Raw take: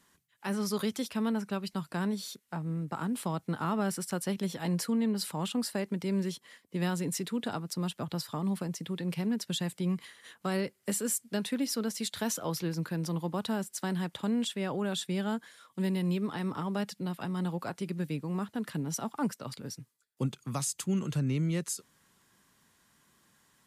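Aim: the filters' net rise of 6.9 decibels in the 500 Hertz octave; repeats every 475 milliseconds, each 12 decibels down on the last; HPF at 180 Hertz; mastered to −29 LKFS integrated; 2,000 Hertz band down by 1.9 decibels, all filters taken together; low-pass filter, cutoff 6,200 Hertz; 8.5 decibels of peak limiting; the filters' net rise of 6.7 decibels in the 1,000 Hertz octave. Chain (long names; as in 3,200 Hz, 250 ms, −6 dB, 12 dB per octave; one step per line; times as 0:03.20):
high-pass filter 180 Hz
low-pass filter 6,200 Hz
parametric band 500 Hz +7.5 dB
parametric band 1,000 Hz +7.5 dB
parametric band 2,000 Hz −6.5 dB
brickwall limiter −22.5 dBFS
repeating echo 475 ms, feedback 25%, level −12 dB
level +5 dB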